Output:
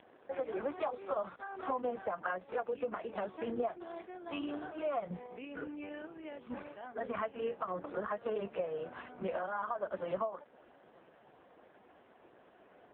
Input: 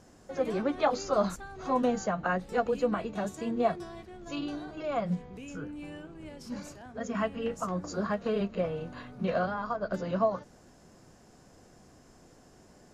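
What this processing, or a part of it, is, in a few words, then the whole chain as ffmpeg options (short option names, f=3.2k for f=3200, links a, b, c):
voicemail: -af "highpass=400,lowpass=3.2k,acompressor=threshold=-36dB:ratio=6,volume=4dB" -ar 8000 -c:a libopencore_amrnb -b:a 4750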